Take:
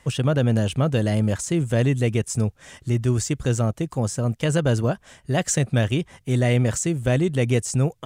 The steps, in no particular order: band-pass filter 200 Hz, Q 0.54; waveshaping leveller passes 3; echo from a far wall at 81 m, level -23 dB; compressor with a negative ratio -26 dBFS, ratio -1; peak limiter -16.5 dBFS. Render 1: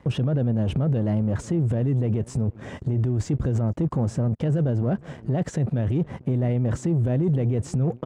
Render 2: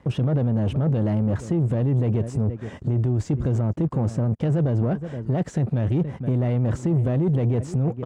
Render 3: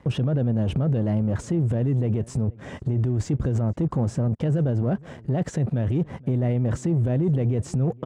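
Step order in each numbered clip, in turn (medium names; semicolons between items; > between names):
compressor with a negative ratio > echo from a far wall > waveshaping leveller > band-pass filter > peak limiter; echo from a far wall > peak limiter > compressor with a negative ratio > waveshaping leveller > band-pass filter; compressor with a negative ratio > waveshaping leveller > band-pass filter > peak limiter > echo from a far wall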